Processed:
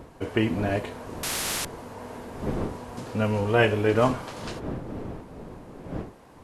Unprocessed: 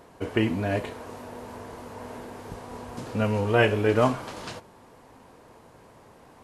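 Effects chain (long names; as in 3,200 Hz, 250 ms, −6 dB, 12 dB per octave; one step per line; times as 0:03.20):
wind on the microphone 380 Hz −36 dBFS
0:01.23–0:01.65: every bin compressed towards the loudest bin 10 to 1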